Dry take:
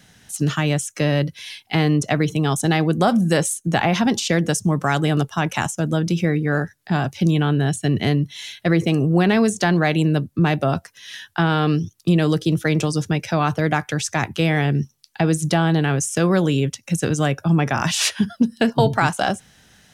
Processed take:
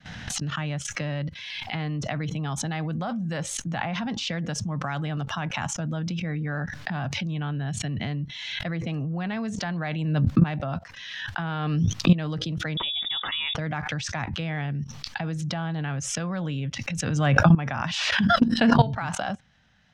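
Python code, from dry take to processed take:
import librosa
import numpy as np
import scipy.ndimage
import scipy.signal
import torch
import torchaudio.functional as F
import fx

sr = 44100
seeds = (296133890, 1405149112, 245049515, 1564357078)

y = fx.fade_in_head(x, sr, length_s=1.23)
y = fx.peak_eq(y, sr, hz=380.0, db=-14.5, octaves=0.61)
y = fx.level_steps(y, sr, step_db=16)
y = fx.air_absorb(y, sr, metres=200.0)
y = fx.freq_invert(y, sr, carrier_hz=3600, at=(12.77, 13.55))
y = fx.pre_swell(y, sr, db_per_s=31.0)
y = y * librosa.db_to_amplitude(3.5)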